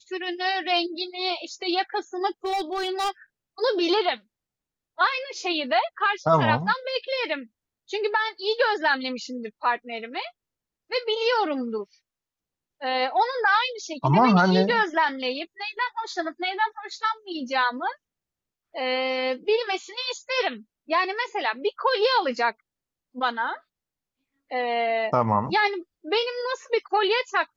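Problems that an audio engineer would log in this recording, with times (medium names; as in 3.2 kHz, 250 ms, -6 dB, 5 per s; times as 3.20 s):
2.45–3.10 s: clipped -22.5 dBFS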